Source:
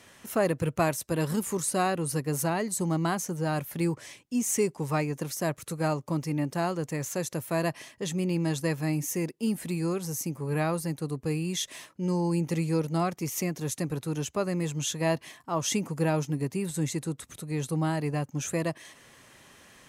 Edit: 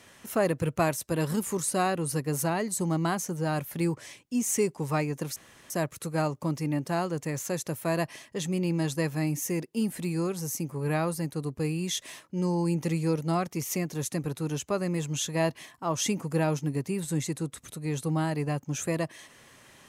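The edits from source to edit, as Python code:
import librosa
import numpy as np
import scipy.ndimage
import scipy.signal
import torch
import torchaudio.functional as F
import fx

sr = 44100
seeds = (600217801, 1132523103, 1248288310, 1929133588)

y = fx.edit(x, sr, fx.insert_room_tone(at_s=5.36, length_s=0.34), tone=tone)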